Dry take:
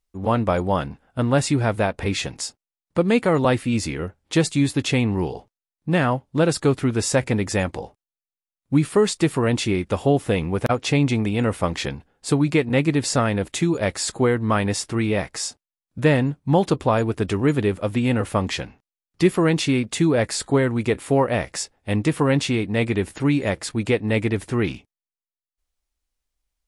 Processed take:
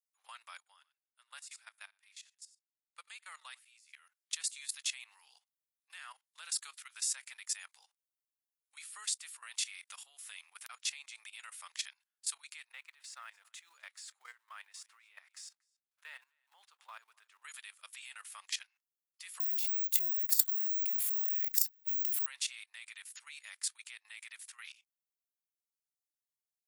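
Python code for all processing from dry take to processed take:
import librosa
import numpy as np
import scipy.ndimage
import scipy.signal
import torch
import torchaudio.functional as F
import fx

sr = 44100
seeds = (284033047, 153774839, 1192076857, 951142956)

y = fx.chain(x, sr, fx.echo_single(ms=89, db=-14.5),
    fx.upward_expand(threshold_db=-27.0, expansion=2.5), at=(0.57, 3.93))
y = fx.chain(y, sr, fx.law_mismatch(coded='mu'),
    fx.lowpass(hz=1000.0, slope=6),
    fx.echo_single(ms=256, db=-24.0), at=(12.72, 17.43))
y = fx.chain(y, sr, fx.over_compress(threshold_db=-28.0, ratio=-1.0),
    fx.resample_bad(factor=2, down='none', up='zero_stuff'), at=(19.4, 22.26))
y = scipy.signal.sosfilt(scipy.signal.butter(4, 1100.0, 'highpass', fs=sr, output='sos'), y)
y = np.diff(y, prepend=0.0)
y = fx.level_steps(y, sr, step_db=16)
y = y * librosa.db_to_amplitude(-1.0)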